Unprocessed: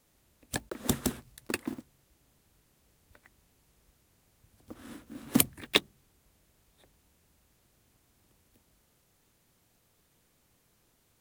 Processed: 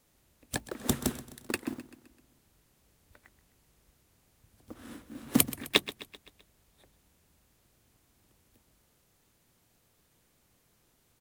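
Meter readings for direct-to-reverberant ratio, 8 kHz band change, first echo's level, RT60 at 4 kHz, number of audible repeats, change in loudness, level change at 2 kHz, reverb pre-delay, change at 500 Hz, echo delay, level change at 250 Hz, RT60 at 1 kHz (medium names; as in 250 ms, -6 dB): no reverb, 0.0 dB, -16.0 dB, no reverb, 4, 0.0 dB, 0.0 dB, no reverb, 0.0 dB, 129 ms, 0.0 dB, no reverb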